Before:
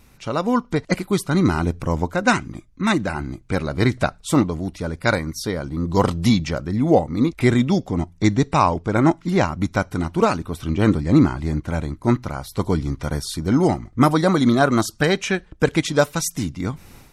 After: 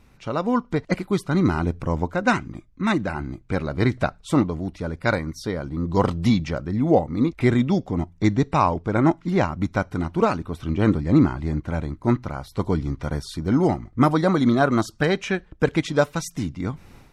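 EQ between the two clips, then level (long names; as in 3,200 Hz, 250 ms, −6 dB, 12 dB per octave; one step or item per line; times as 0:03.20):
low-pass filter 3,100 Hz 6 dB per octave
−2.0 dB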